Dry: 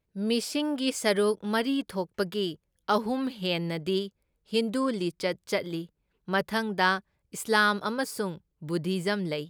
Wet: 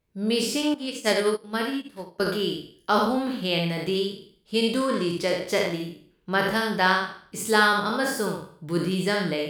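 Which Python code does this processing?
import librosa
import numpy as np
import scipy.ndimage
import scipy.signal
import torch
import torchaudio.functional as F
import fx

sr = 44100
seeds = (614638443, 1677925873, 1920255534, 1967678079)

y = fx.spec_trails(x, sr, decay_s=0.52)
y = fx.room_early_taps(y, sr, ms=(23, 70), db=(-12.5, -4.5))
y = fx.upward_expand(y, sr, threshold_db=-33.0, expansion=2.5, at=(0.74, 2.2))
y = y * librosa.db_to_amplitude(1.5)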